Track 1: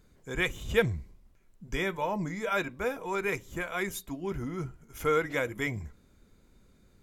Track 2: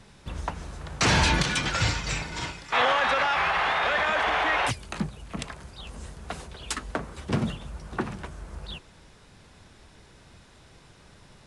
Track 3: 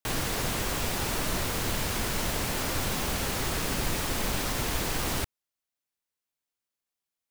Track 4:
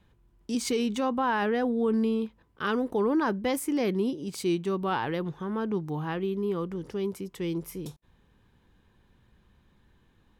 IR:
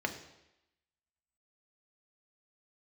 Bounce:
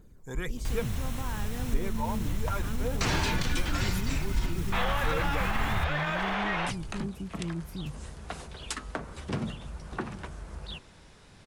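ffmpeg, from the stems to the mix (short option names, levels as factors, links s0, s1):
-filter_complex "[0:a]equalizer=f=2900:w=0.77:g=-11,aphaser=in_gain=1:out_gain=1:delay=1.2:decay=0.5:speed=1.7:type=triangular,asubboost=boost=10:cutoff=52,volume=1.19[s0];[1:a]bandreject=f=115.7:t=h:w=4,bandreject=f=231.4:t=h:w=4,bandreject=f=347.1:t=h:w=4,bandreject=f=462.8:t=h:w=4,bandreject=f=578.5:t=h:w=4,bandreject=f=694.2:t=h:w=4,bandreject=f=809.9:t=h:w=4,bandreject=f=925.6:t=h:w=4,bandreject=f=1041.3:t=h:w=4,bandreject=f=1157:t=h:w=4,bandreject=f=1272.7:t=h:w=4,bandreject=f=1388.4:t=h:w=4,bandreject=f=1504.1:t=h:w=4,adelay=2000,volume=0.891[s1];[2:a]bandreject=f=4700:w=8,adelay=600,volume=0.473,asplit=2[s2][s3];[s3]volume=0.112[s4];[3:a]volume=0.355[s5];[s2][s5]amix=inputs=2:normalize=0,asubboost=boost=11.5:cutoff=160,alimiter=limit=0.158:level=0:latency=1:release=57,volume=1[s6];[s4]aecho=0:1:500:1[s7];[s0][s1][s6][s7]amix=inputs=4:normalize=0,acompressor=threshold=0.0158:ratio=1.5"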